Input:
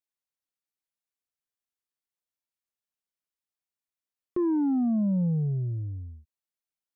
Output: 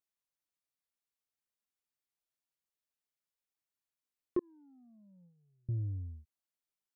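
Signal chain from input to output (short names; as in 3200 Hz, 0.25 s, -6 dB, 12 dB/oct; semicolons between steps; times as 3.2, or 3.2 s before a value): 4.39–5.69 gate -21 dBFS, range -42 dB; gain -2.5 dB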